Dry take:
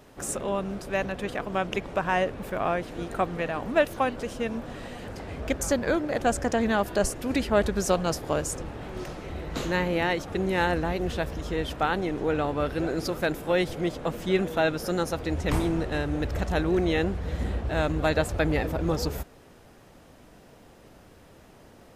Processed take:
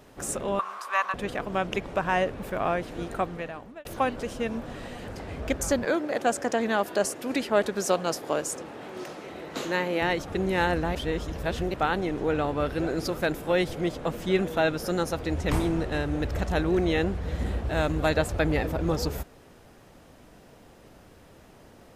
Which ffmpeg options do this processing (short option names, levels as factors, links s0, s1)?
-filter_complex "[0:a]asettb=1/sr,asplit=3[s0][s1][s2];[s0]atrim=end=0.594[s3];[s1]atrim=start=0.59:end=1.14,asetpts=PTS-STARTPTS,afade=t=in:d=0.004:c=qsin,afade=t=out:st=0.546:d=0.004:c=qsin,highpass=f=1100:t=q:w=12[s4];[s2]atrim=start=1.136[s5];[s3][s4]acrossfade=d=0.004:c1=hsin:c2=qsin[s6];[s6][s5]acrossfade=d=0.004:c1=qsin:c2=hsin,asettb=1/sr,asplit=3[s7][s8][s9];[s7]atrim=end=5.854[s10];[s8]atrim=start=5.85:end=10.02,asetpts=PTS-STARTPTS,afade=t=in:d=0.004:c=qsin,afade=t=out:st=4.166:d=0.004:c=qsin,highpass=240[s11];[s9]atrim=start=10.016[s12];[s10][s11]acrossfade=d=0.004:c1=hsin:c2=qsin[s13];[s13][s12]acrossfade=d=0.004:c1=qsin:c2=hsin,asettb=1/sr,asplit=3[s14][s15][s16];[s14]atrim=end=17.464[s17];[s15]atrim=start=17.46:end=18.14,asetpts=PTS-STARTPTS,afade=t=in:d=0.004:c=qsin,afade=t=out:st=0.676:d=0.004:c=qsin,highshelf=f=8400:g=5.5[s18];[s16]atrim=start=18.136[s19];[s17][s18]acrossfade=d=0.004:c1=hsin:c2=qsin[s20];[s20][s19]acrossfade=d=0.004:c1=qsin:c2=hsin,asplit=4[s21][s22][s23][s24];[s21]atrim=end=3.85,asetpts=PTS-STARTPTS,afade=t=out:st=3.07:d=0.78[s25];[s22]atrim=start=3.85:end=10.952,asetpts=PTS-STARTPTS,afade=t=in:d=0.004:c=hsin[s26];[s23]atrim=start=10.948:end=11.742,asetpts=PTS-STARTPTS,areverse[s27];[s24]atrim=start=11.738[s28];[s25][s26]concat=n=2:v=0:a=1[s29];[s29][s27]acrossfade=d=0.004:c1=hsin:c2=hsin[s30];[s30][s28]acrossfade=d=0.004:c1=hsin:c2=hsin"